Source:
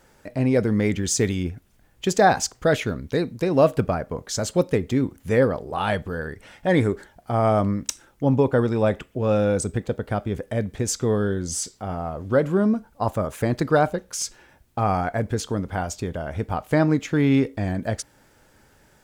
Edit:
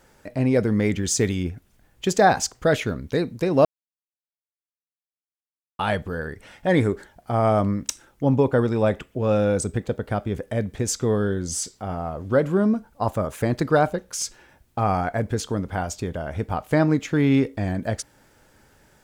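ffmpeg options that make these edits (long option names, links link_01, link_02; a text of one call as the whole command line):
ffmpeg -i in.wav -filter_complex "[0:a]asplit=3[link_01][link_02][link_03];[link_01]atrim=end=3.65,asetpts=PTS-STARTPTS,afade=type=out:start_time=3.646:duration=0.004:curve=hsin[link_04];[link_02]atrim=start=3.65:end=5.79,asetpts=PTS-STARTPTS,volume=0[link_05];[link_03]atrim=start=5.79,asetpts=PTS-STARTPTS,afade=type=in:duration=0.004:curve=hsin[link_06];[link_04][link_05][link_06]concat=n=3:v=0:a=1" out.wav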